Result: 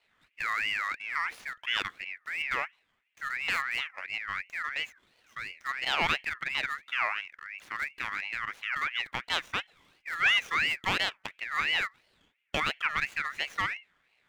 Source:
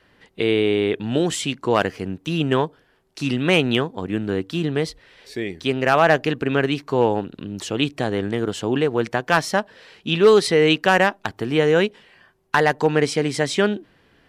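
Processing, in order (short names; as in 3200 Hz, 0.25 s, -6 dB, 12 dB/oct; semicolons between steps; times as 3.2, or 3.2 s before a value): median filter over 15 samples; ring modulator with a swept carrier 2000 Hz, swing 25%, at 2.9 Hz; gain -9 dB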